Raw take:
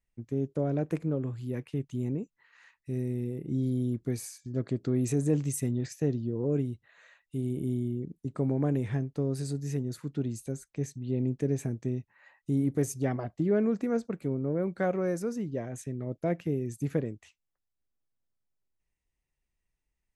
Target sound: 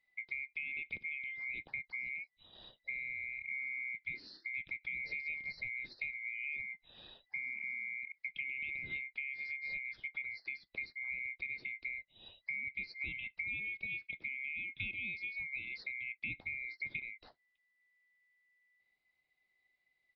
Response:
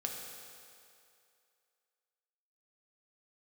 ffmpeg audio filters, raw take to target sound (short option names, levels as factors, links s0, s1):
-filter_complex "[0:a]afftfilt=real='real(if(lt(b,920),b+92*(1-2*mod(floor(b/92),2)),b),0)':imag='imag(if(lt(b,920),b+92*(1-2*mod(floor(b/92),2)),b),0)':win_size=2048:overlap=0.75,acrossover=split=310[s0][s1];[s1]acompressor=threshold=0.00794:ratio=6[s2];[s0][s2]amix=inputs=2:normalize=0,aresample=11025,aresample=44100,volume=1.33"